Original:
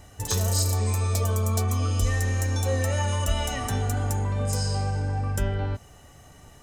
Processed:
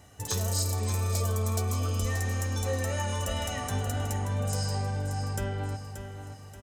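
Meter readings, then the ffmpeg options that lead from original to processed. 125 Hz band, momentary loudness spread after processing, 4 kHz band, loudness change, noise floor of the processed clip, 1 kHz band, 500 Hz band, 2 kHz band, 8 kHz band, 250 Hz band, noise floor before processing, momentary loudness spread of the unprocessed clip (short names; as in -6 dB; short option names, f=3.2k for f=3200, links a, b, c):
-4.5 dB, 7 LU, -3.5 dB, -4.5 dB, -46 dBFS, -3.5 dB, -3.5 dB, -3.5 dB, -3.5 dB, -3.5 dB, -51 dBFS, 4 LU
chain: -filter_complex "[0:a]highpass=72,asplit=2[a][b];[b]aecho=0:1:580|1160|1740|2320|2900:0.355|0.149|0.0626|0.0263|0.011[c];[a][c]amix=inputs=2:normalize=0,volume=-4dB"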